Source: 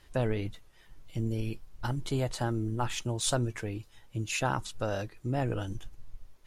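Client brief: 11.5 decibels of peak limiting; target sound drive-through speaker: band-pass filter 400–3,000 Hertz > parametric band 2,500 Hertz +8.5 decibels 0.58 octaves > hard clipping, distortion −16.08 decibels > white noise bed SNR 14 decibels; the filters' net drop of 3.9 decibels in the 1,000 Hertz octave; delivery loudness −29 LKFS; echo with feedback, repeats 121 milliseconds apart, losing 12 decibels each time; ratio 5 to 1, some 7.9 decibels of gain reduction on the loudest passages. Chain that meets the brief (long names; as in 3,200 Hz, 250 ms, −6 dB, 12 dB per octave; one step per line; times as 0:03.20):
parametric band 1,000 Hz −5.5 dB
downward compressor 5 to 1, threshold −34 dBFS
brickwall limiter −33 dBFS
band-pass filter 400–3,000 Hz
parametric band 2,500 Hz +8.5 dB 0.58 octaves
repeating echo 121 ms, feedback 25%, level −12 dB
hard clipping −38.5 dBFS
white noise bed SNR 14 dB
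level +19 dB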